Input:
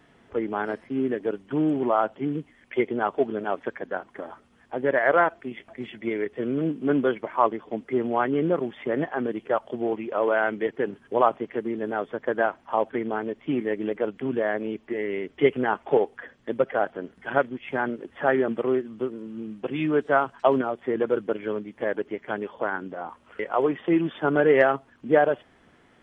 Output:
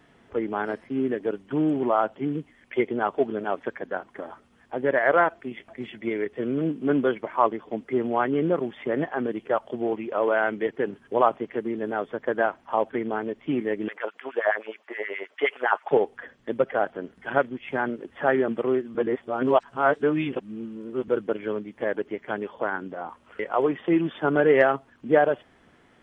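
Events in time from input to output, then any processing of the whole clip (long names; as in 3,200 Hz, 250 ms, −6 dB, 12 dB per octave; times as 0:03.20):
0:13.88–0:15.91: auto-filter high-pass sine 9.5 Hz 560–1,800 Hz
0:18.95–0:21.08: reverse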